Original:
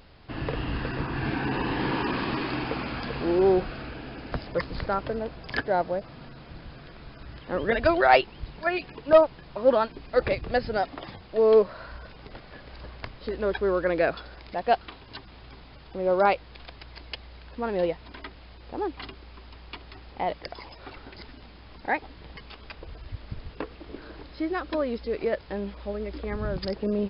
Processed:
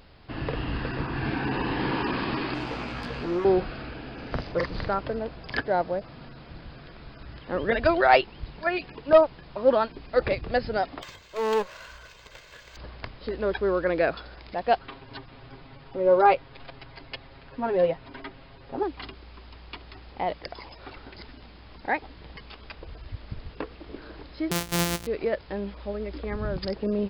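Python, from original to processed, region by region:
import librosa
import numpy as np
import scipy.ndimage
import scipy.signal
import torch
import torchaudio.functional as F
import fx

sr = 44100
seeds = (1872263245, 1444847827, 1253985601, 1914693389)

y = fx.chain(x, sr, fx.tube_stage(drive_db=27.0, bias=0.6),
    fx.doubler(ms=17.0, db=-3.0), at=(2.54, 3.45))
y = fx.chain(y, sr, fx.doubler(ms=44.0, db=-3.5),
    fx.resample_bad(factor=4, down='none', up='filtered'),
    fx.doppler_dist(depth_ms=0.13), at=(4.14, 4.91))
y = fx.chain(y, sr, fx.lower_of_two(delay_ms=1.9),
    fx.tilt_shelf(db=-8.0, hz=1300.0),
    fx.resample_linear(factor=4), at=(11.02, 12.77))
y = fx.chain(y, sr, fx.high_shelf(hz=4000.0, db=-11.0),
    fx.comb(ms=7.4, depth=0.94), at=(14.79, 18.83))
y = fx.chain(y, sr, fx.sample_sort(block=256),
    fx.high_shelf(hz=2300.0, db=10.5), at=(24.51, 25.07))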